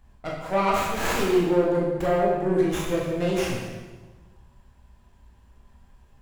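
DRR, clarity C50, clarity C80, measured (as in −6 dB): −4.0 dB, 1.0 dB, 3.5 dB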